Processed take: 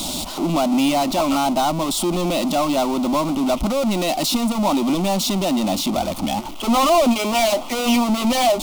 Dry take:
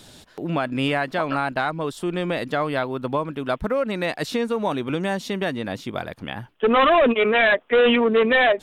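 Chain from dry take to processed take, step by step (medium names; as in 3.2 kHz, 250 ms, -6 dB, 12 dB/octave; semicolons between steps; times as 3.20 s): power-law waveshaper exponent 0.35; static phaser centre 450 Hz, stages 6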